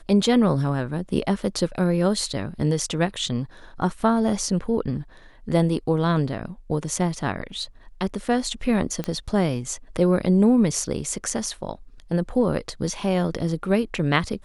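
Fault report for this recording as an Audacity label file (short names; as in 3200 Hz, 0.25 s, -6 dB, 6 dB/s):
9.040000	9.040000	pop -14 dBFS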